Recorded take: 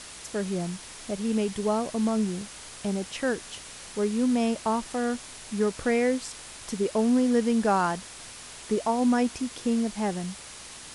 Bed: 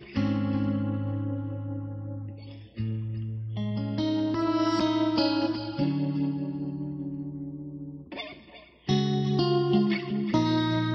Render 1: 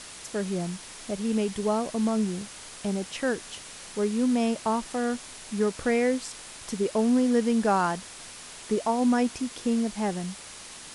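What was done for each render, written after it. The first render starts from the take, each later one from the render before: de-hum 60 Hz, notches 2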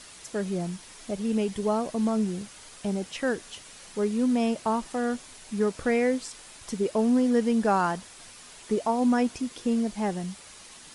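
denoiser 6 dB, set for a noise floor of -44 dBFS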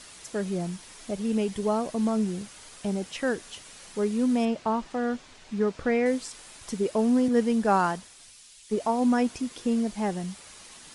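4.45–6.06 air absorption 96 m; 7.28–8.8 three-band expander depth 70%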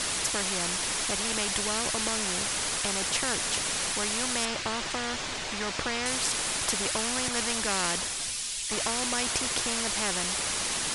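spectral compressor 4:1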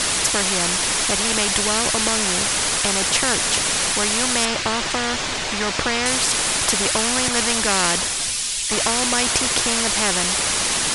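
gain +9.5 dB; limiter -3 dBFS, peak gain reduction 2.5 dB

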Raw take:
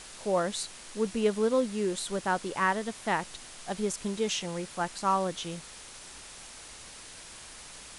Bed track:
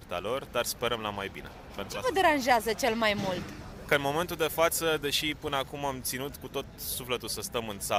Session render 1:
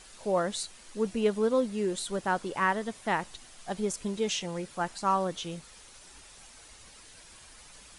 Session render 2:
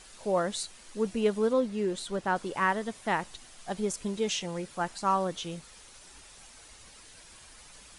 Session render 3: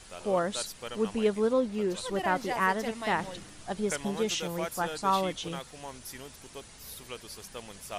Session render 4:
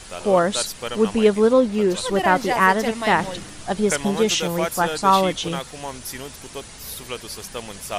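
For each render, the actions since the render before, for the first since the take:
denoiser 8 dB, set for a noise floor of -47 dBFS
1.53–2.36 high shelf 8500 Hz -11 dB
add bed track -10.5 dB
gain +10.5 dB

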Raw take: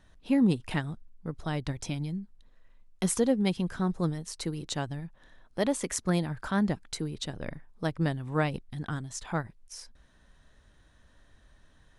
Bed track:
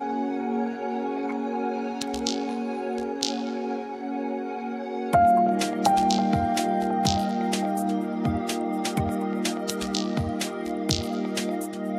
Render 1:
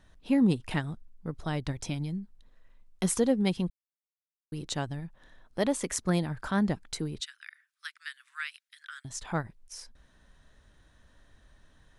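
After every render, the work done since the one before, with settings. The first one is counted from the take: 3.7–4.52 mute; 7.2–9.05 steep high-pass 1400 Hz 48 dB/oct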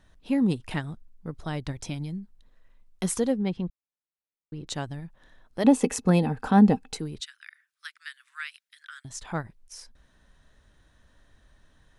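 3.37–4.67 tape spacing loss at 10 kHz 22 dB; 5.64–6.97 small resonant body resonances 250/450/780/2600 Hz, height 16 dB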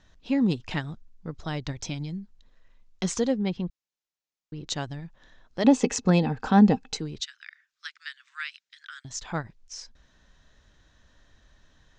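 steep low-pass 7100 Hz 48 dB/oct; high shelf 3300 Hz +7 dB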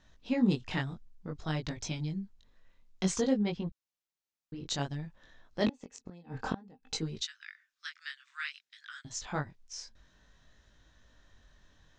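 flipped gate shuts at -13 dBFS, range -31 dB; chorus 0.56 Hz, delay 18.5 ms, depth 4.4 ms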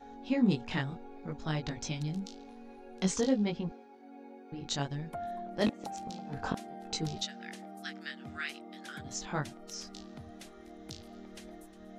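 add bed track -21 dB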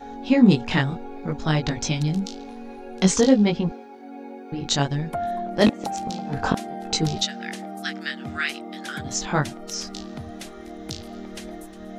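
gain +12 dB

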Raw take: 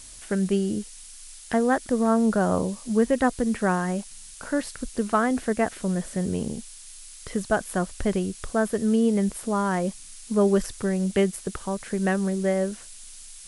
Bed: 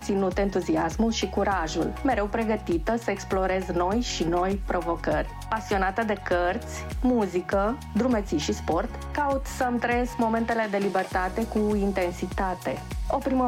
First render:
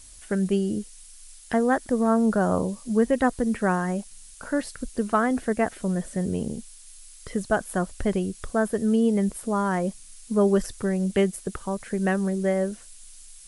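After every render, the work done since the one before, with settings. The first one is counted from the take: denoiser 6 dB, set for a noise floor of -44 dBFS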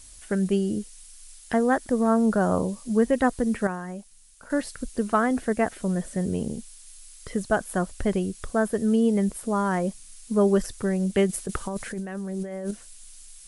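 3.67–4.5 gain -8.5 dB; 11.27–12.71 negative-ratio compressor -31 dBFS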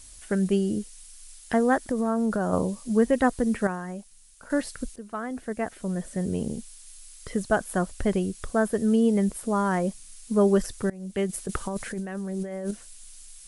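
1.86–2.53 compressor 3:1, threshold -22 dBFS; 4.96–6.53 fade in, from -16 dB; 10.9–11.53 fade in, from -23 dB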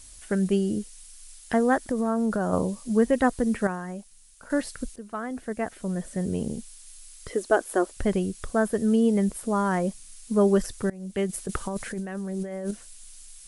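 7.29–7.97 resonant low shelf 230 Hz -13.5 dB, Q 3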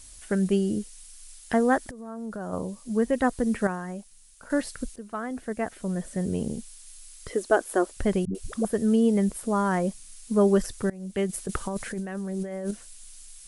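1.91–3.62 fade in, from -17.5 dB; 8.25–8.65 dispersion highs, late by 97 ms, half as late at 300 Hz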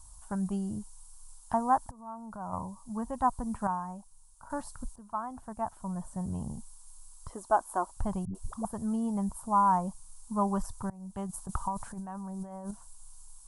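EQ curve 120 Hz 0 dB, 460 Hz -20 dB, 950 Hz +9 dB, 2000 Hz -24 dB, 8100 Hz -7 dB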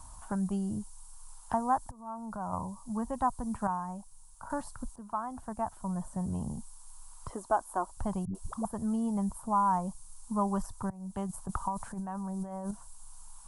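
three-band squash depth 40%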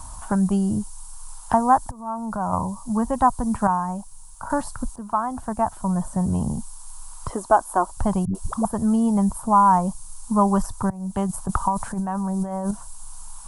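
gain +11.5 dB

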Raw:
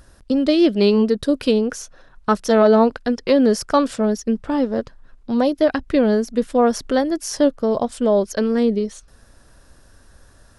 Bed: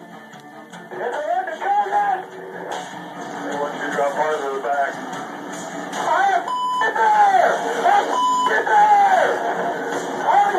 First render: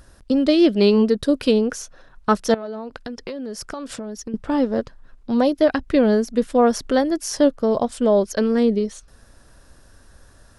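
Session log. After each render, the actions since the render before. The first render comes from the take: 2.54–4.34 compressor 12:1, threshold -27 dBFS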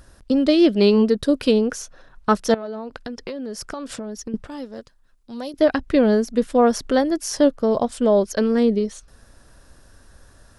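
4.47–5.54 pre-emphasis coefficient 0.8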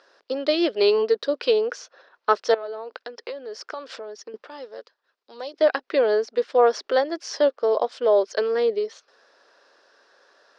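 elliptic band-pass 420–5000 Hz, stop band 60 dB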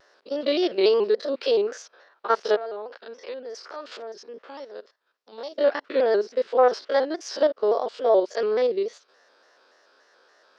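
stepped spectrum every 50 ms; shaped vibrato square 3.5 Hz, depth 100 cents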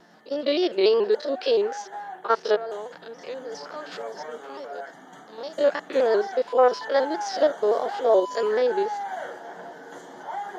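add bed -17.5 dB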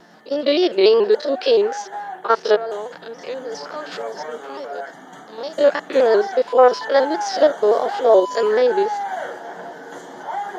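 gain +6 dB; limiter -2 dBFS, peak gain reduction 1.5 dB

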